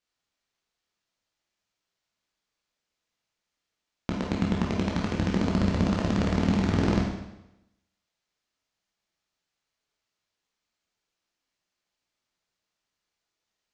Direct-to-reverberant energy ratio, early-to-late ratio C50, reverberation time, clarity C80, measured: -3.0 dB, 2.0 dB, 0.90 s, 5.5 dB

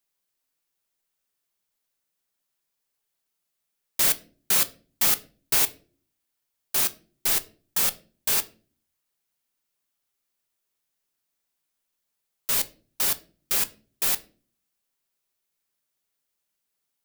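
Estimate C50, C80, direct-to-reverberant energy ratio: 19.5 dB, 24.0 dB, 10.5 dB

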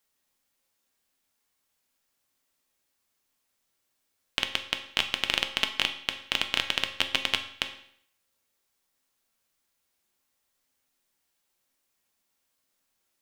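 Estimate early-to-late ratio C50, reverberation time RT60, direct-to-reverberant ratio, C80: 10.5 dB, 0.65 s, 5.5 dB, 13.5 dB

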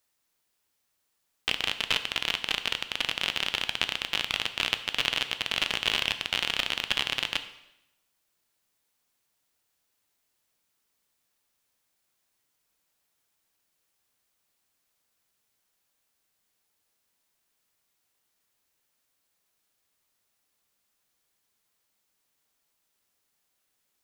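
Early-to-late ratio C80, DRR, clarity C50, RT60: 14.5 dB, 9.0 dB, 12.5 dB, 0.85 s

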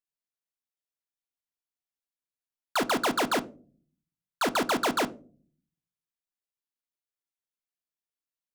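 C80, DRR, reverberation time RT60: 25.0 dB, 10.5 dB, 0.40 s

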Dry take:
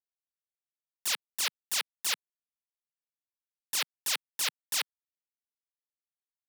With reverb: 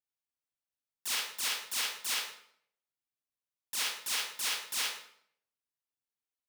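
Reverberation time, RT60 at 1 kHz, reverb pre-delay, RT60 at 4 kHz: 0.65 s, 0.60 s, 30 ms, 0.50 s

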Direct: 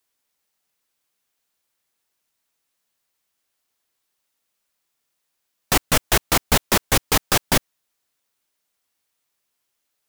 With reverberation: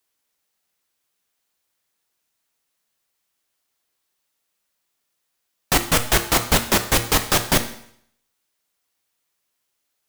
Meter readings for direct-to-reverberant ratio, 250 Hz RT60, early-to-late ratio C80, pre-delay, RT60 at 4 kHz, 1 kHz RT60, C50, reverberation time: 7.5 dB, 0.65 s, 15.0 dB, 8 ms, 0.65 s, 0.65 s, 11.5 dB, 0.65 s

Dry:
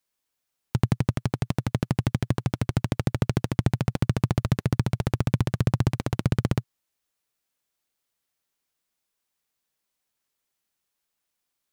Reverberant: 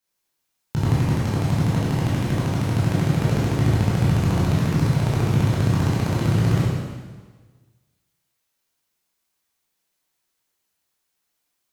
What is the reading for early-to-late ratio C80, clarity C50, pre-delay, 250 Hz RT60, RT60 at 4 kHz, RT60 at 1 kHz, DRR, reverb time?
0.5 dB, -2.5 dB, 14 ms, 1.5 s, 1.4 s, 1.4 s, -8.5 dB, 1.4 s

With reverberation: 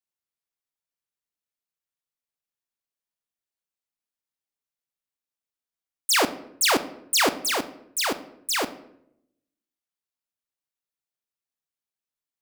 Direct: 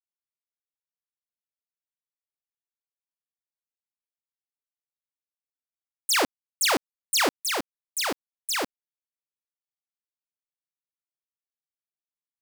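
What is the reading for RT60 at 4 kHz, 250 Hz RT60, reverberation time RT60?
0.50 s, 1.0 s, 0.75 s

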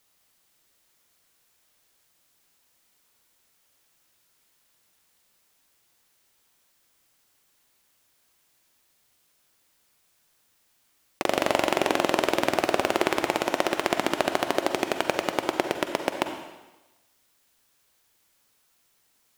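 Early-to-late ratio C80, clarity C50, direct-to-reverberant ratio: 8.5 dB, 7.0 dB, 6.0 dB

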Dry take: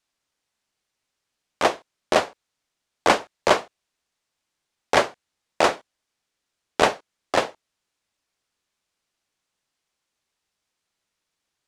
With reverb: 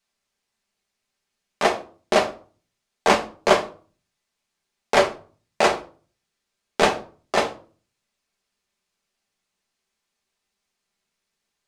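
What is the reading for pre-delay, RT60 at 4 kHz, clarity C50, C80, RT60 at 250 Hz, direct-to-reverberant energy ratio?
5 ms, 0.30 s, 13.5 dB, 19.5 dB, 0.50 s, 1.0 dB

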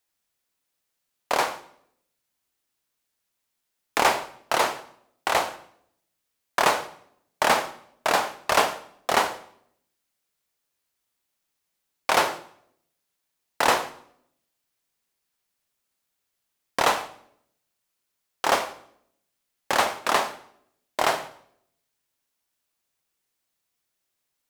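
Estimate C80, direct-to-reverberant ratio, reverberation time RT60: 17.0 dB, 10.5 dB, 0.65 s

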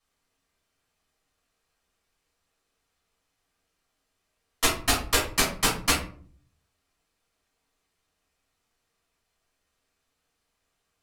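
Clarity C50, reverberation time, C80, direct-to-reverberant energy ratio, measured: 6.5 dB, 0.50 s, 11.0 dB, -6.0 dB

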